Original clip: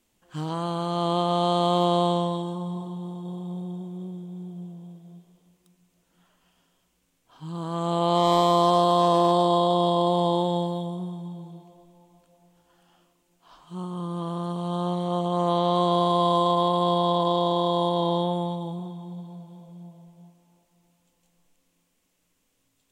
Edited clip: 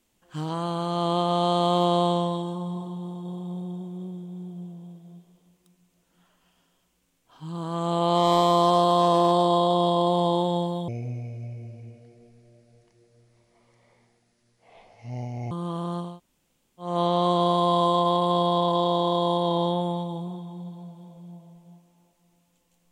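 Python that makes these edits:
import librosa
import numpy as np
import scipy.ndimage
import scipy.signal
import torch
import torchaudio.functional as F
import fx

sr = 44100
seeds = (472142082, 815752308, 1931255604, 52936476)

y = fx.edit(x, sr, fx.speed_span(start_s=10.88, length_s=3.15, speed=0.68),
    fx.room_tone_fill(start_s=14.6, length_s=0.81, crossfade_s=0.24), tone=tone)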